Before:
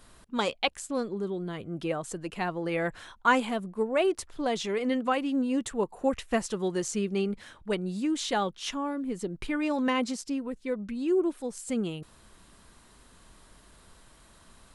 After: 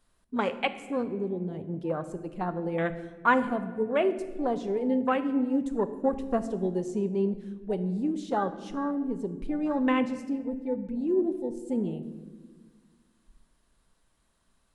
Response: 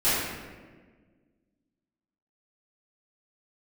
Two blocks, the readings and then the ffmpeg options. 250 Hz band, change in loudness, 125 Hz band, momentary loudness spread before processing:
+1.5 dB, +0.5 dB, +2.5 dB, 8 LU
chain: -filter_complex "[0:a]afwtdn=0.0251,asplit=2[link_01][link_02];[1:a]atrim=start_sample=2205,lowshelf=frequency=370:gain=8.5,highshelf=frequency=3600:gain=9[link_03];[link_02][link_03]afir=irnorm=-1:irlink=0,volume=-28.5dB[link_04];[link_01][link_04]amix=inputs=2:normalize=0"

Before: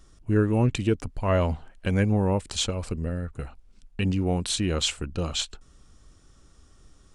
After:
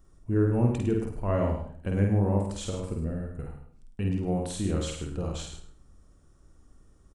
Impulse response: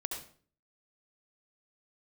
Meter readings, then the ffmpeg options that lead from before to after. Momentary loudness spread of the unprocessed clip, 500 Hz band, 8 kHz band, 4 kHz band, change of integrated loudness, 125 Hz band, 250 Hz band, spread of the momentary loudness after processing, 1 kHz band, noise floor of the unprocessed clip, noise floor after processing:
10 LU, −2.5 dB, −9.0 dB, −13.5 dB, −2.5 dB, −1.5 dB, −2.0 dB, 14 LU, −4.0 dB, −57 dBFS, −59 dBFS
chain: -filter_complex "[0:a]equalizer=frequency=3800:width=0.52:gain=-12.5,asplit=2[link_01][link_02];[link_02]adelay=50,volume=-3dB[link_03];[link_01][link_03]amix=inputs=2:normalize=0,aecho=1:1:104:0.376,asplit=2[link_04][link_05];[1:a]atrim=start_sample=2205[link_06];[link_05][link_06]afir=irnorm=-1:irlink=0,volume=-5dB[link_07];[link_04][link_07]amix=inputs=2:normalize=0,volume=-7.5dB"

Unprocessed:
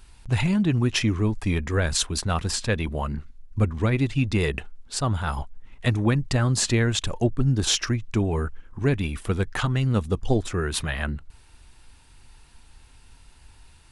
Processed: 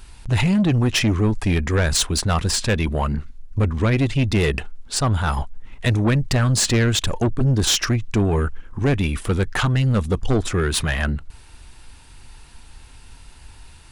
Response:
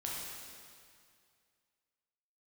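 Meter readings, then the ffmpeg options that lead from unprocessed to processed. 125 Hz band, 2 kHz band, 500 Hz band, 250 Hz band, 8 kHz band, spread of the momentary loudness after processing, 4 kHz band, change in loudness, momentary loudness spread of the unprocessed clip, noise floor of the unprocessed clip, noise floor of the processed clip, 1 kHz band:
+4.5 dB, +4.5 dB, +4.0 dB, +4.0 dB, +5.0 dB, 7 LU, +5.0 dB, +4.0 dB, 9 LU, −52 dBFS, −44 dBFS, +5.0 dB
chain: -af "asoftclip=type=tanh:threshold=-20.5dB,volume=7.5dB"

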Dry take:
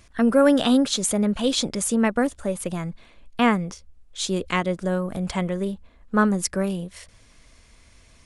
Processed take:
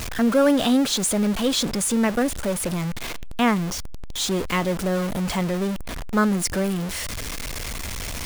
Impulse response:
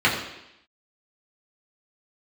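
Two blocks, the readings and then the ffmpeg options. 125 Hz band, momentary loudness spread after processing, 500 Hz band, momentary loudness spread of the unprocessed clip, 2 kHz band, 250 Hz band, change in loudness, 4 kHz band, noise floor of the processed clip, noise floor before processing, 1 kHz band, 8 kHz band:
+2.0 dB, 11 LU, −0.5 dB, 14 LU, +1.0 dB, 0.0 dB, −0.5 dB, +2.0 dB, −30 dBFS, −54 dBFS, 0.0 dB, +2.5 dB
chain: -af "aeval=exprs='val(0)+0.5*0.0794*sgn(val(0))':channel_layout=same,volume=-2.5dB"

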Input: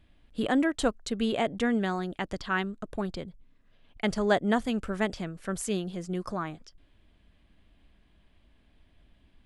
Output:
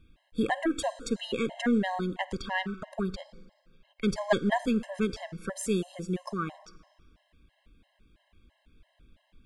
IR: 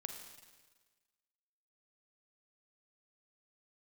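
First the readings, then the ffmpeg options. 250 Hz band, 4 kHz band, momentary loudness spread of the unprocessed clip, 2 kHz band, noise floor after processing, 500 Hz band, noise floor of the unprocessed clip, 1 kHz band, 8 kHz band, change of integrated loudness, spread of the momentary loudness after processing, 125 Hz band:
−0.5 dB, −1.0 dB, 10 LU, −1.5 dB, −72 dBFS, −1.5 dB, −64 dBFS, −1.0 dB, −0.5 dB, −1.0 dB, 10 LU, 0.0 dB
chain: -filter_complex "[0:a]aeval=exprs='0.316*(cos(1*acos(clip(val(0)/0.316,-1,1)))-cos(1*PI/2))+0.0501*(cos(2*acos(clip(val(0)/0.316,-1,1)))-cos(2*PI/2))':channel_layout=same,asplit=2[link_01][link_02];[1:a]atrim=start_sample=2205[link_03];[link_02][link_03]afir=irnorm=-1:irlink=0,volume=-4.5dB[link_04];[link_01][link_04]amix=inputs=2:normalize=0,afftfilt=real='re*gt(sin(2*PI*3*pts/sr)*(1-2*mod(floor(b*sr/1024/540),2)),0)':imag='im*gt(sin(2*PI*3*pts/sr)*(1-2*mod(floor(b*sr/1024/540),2)),0)':win_size=1024:overlap=0.75"

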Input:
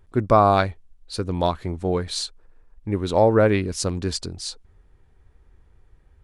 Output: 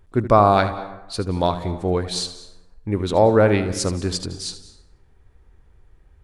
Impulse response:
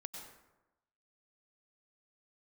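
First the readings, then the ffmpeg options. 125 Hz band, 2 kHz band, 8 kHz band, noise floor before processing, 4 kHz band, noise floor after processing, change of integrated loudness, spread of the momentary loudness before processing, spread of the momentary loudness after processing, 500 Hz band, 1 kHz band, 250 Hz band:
+1.5 dB, +2.0 dB, +2.0 dB, −57 dBFS, +2.0 dB, −55 dBFS, +2.0 dB, 16 LU, 16 LU, +2.0 dB, +2.0 dB, +2.0 dB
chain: -filter_complex "[0:a]asplit=2[link_01][link_02];[1:a]atrim=start_sample=2205,adelay=76[link_03];[link_02][link_03]afir=irnorm=-1:irlink=0,volume=-7.5dB[link_04];[link_01][link_04]amix=inputs=2:normalize=0,volume=1.5dB"

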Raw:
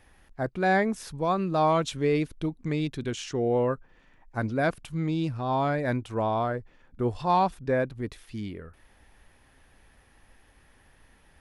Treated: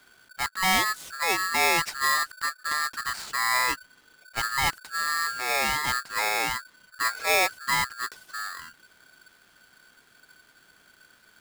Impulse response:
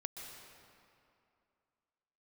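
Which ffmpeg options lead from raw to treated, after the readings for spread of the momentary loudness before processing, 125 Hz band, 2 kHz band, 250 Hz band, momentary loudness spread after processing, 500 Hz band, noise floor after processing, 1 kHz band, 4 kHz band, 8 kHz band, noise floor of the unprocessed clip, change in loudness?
12 LU, −15.0 dB, +10.0 dB, −13.5 dB, 12 LU, −9.0 dB, −60 dBFS, +1.0 dB, +13.0 dB, +16.0 dB, −60 dBFS, +2.5 dB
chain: -af "aeval=exprs='val(0)*sgn(sin(2*PI*1500*n/s))':channel_layout=same"

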